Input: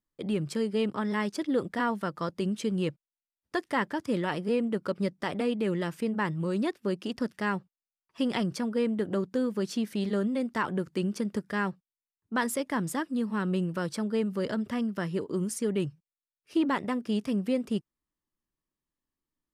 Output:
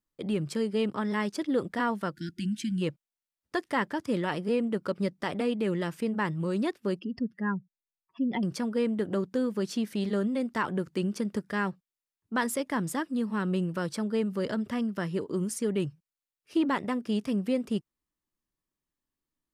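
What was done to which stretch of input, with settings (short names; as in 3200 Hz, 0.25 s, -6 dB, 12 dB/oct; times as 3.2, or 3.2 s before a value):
2.14–2.82 spectral delete 360–1400 Hz
6.99–8.43 spectral contrast raised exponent 2.3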